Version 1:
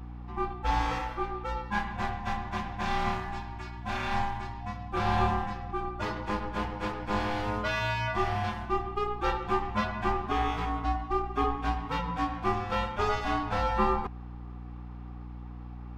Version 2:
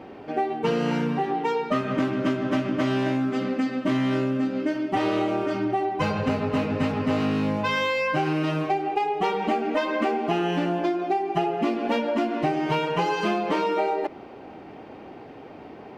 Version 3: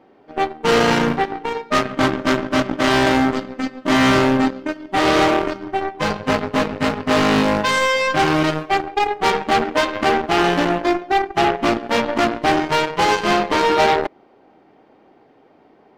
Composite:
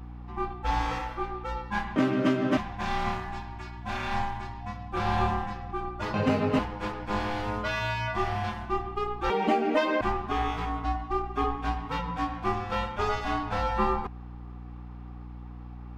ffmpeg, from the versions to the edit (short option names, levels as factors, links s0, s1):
-filter_complex "[1:a]asplit=3[s0][s1][s2];[0:a]asplit=4[s3][s4][s5][s6];[s3]atrim=end=1.962[s7];[s0]atrim=start=1.958:end=2.572[s8];[s4]atrim=start=2.568:end=6.142[s9];[s1]atrim=start=6.138:end=6.592[s10];[s5]atrim=start=6.588:end=9.302[s11];[s2]atrim=start=9.298:end=10.012[s12];[s6]atrim=start=10.008[s13];[s7][s8]acrossfade=d=0.004:c1=hsin:c2=hsin[s14];[s14][s9]acrossfade=d=0.004:c1=hsin:c2=hsin[s15];[s15][s10]acrossfade=d=0.004:c1=hsin:c2=hsin[s16];[s16][s11]acrossfade=d=0.004:c1=hsin:c2=hsin[s17];[s17][s12]acrossfade=d=0.004:c1=hsin:c2=hsin[s18];[s18][s13]acrossfade=d=0.004:c1=hsin:c2=hsin"